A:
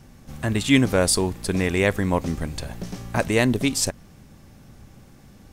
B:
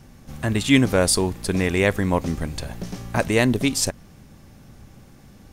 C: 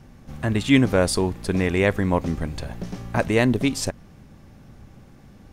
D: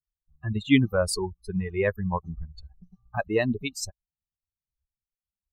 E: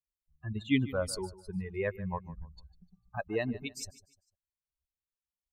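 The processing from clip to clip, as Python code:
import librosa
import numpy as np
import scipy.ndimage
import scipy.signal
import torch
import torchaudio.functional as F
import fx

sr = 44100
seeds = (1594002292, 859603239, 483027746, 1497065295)

y1 = fx.notch(x, sr, hz=7800.0, q=29.0)
y1 = y1 * librosa.db_to_amplitude(1.0)
y2 = fx.high_shelf(y1, sr, hz=4300.0, db=-9.0)
y3 = fx.bin_expand(y2, sr, power=3.0)
y4 = fx.echo_feedback(y3, sr, ms=150, feedback_pct=34, wet_db=-17.5)
y4 = y4 * librosa.db_to_amplitude(-8.0)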